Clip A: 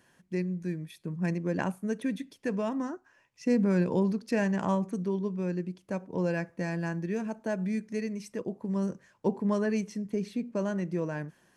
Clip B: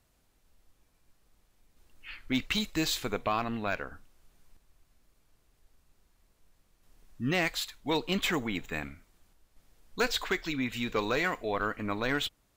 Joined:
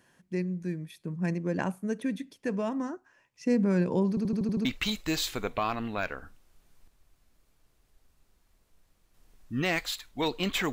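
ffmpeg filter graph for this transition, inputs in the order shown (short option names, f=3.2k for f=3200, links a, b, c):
-filter_complex "[0:a]apad=whole_dur=10.72,atrim=end=10.72,asplit=7[a][b][c][d][e][f][g];[a]atrim=end=4.172[h];[b]atrim=start=4.088:end=4.172[i];[c]atrim=start=4.088:end=4.172[j];[d]atrim=start=4.088:end=4.172[k];[e]atrim=start=4.088:end=4.172[l];[f]atrim=start=4.088:end=4.172[m];[g]atrim=start=4.088:end=4.172[n];[1:a]atrim=start=2.338:end=8.41[o];[h][i]acrossfade=d=0.004:c1=hsin:c2=hsin[p];[p][j]acrossfade=d=0.004:c1=hsin:c2=hsin[q];[q][k]acrossfade=d=0.004:c1=hsin:c2=hsin[r];[r][l]acrossfade=d=0.004:c1=hsin:c2=hsin[s];[s][m]acrossfade=d=0.004:c1=hsin:c2=hsin[t];[t][n]acrossfade=d=0.004:c1=hsin:c2=hsin[u];[u][o]acrossfade=d=0.004:c1=hsin:c2=hsin"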